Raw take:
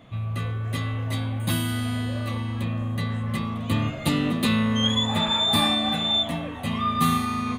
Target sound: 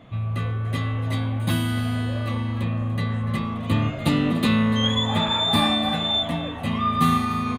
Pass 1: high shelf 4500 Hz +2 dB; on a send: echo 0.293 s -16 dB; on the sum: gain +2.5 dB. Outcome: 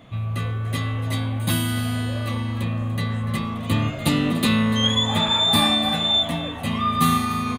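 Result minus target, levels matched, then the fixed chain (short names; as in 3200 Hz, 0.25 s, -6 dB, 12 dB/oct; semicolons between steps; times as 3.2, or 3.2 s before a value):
8000 Hz band +6.5 dB
high shelf 4500 Hz -8 dB; on a send: echo 0.293 s -16 dB; on the sum: gain +2.5 dB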